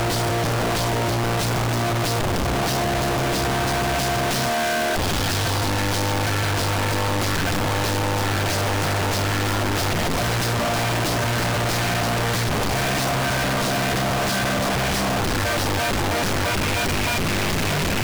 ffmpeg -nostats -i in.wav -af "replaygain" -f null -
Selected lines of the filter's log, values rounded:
track_gain = +6.2 dB
track_peak = 0.060